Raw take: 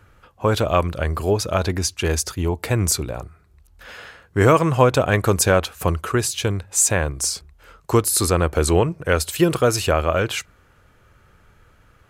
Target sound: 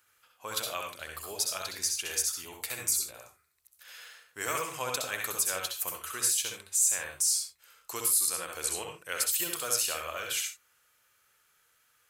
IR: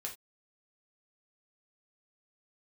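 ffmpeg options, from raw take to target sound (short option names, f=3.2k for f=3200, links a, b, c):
-filter_complex "[0:a]aderivative,alimiter=limit=-15dB:level=0:latency=1:release=138,asplit=2[a][b];[1:a]atrim=start_sample=2205,lowshelf=f=83:g=12,adelay=64[c];[b][c]afir=irnorm=-1:irlink=0,volume=-0.5dB[d];[a][d]amix=inputs=2:normalize=0,volume=-1dB"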